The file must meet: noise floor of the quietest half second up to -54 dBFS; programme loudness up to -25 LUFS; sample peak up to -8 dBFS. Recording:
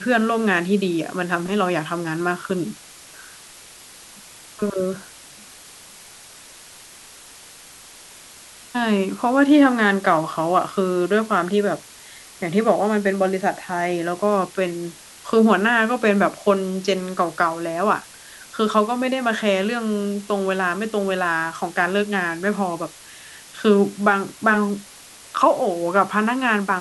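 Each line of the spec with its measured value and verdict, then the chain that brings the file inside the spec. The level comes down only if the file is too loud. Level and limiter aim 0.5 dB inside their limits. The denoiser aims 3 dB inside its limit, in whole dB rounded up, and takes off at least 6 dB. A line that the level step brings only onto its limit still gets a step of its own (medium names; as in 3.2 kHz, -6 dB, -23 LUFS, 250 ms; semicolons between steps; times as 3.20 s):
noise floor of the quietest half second -44 dBFS: fail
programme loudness -20.5 LUFS: fail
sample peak -3.0 dBFS: fail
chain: noise reduction 8 dB, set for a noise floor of -44 dBFS; trim -5 dB; peak limiter -8.5 dBFS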